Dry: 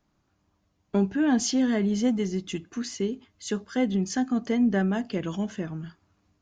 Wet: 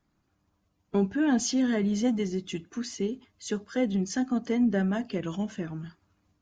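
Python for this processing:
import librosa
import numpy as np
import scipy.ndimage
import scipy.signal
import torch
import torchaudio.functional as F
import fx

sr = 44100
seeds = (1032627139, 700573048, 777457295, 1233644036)

y = fx.spec_quant(x, sr, step_db=15)
y = y * librosa.db_to_amplitude(-1.5)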